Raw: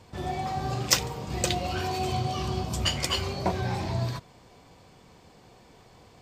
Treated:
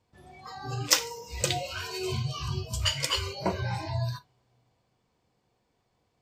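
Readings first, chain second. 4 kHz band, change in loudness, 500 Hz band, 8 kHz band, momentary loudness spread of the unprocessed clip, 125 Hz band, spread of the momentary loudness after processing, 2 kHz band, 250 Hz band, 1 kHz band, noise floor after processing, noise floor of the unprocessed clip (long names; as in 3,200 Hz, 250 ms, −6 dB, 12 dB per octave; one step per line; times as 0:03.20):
0.0 dB, −1.0 dB, −3.0 dB, 0.0 dB, 8 LU, −2.0 dB, 13 LU, −0.5 dB, −5.5 dB, −6.0 dB, −75 dBFS, −55 dBFS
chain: coupled-rooms reverb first 0.42 s, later 3.6 s, from −16 dB, DRR 12 dB
noise reduction from a noise print of the clip's start 20 dB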